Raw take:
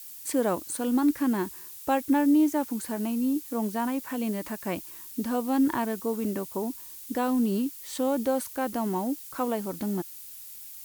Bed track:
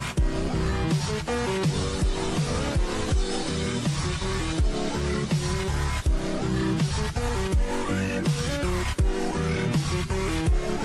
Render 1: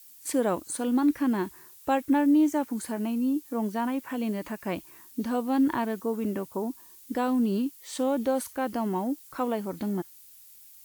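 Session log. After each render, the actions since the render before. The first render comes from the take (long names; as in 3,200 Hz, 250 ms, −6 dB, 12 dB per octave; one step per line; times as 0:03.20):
noise reduction from a noise print 8 dB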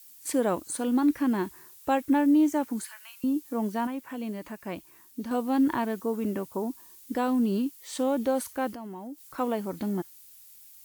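0:02.84–0:03.24: high-pass filter 1,400 Hz 24 dB per octave
0:03.87–0:05.31: clip gain −4.5 dB
0:08.71–0:09.38: downward compressor 3 to 1, threshold −40 dBFS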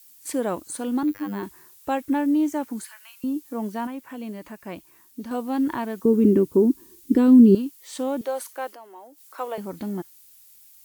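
0:01.03–0:01.43: phases set to zero 100 Hz
0:06.05–0:07.55: low shelf with overshoot 500 Hz +10.5 dB, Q 3
0:08.21–0:09.58: high-pass filter 410 Hz 24 dB per octave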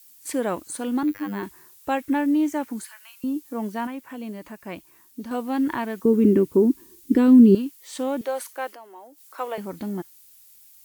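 dynamic equaliser 2,100 Hz, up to +5 dB, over −45 dBFS, Q 1.2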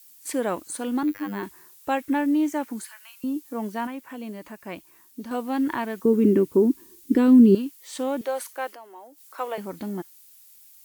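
low-shelf EQ 140 Hz −6 dB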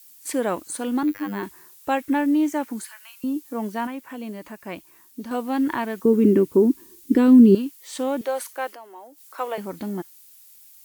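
level +2 dB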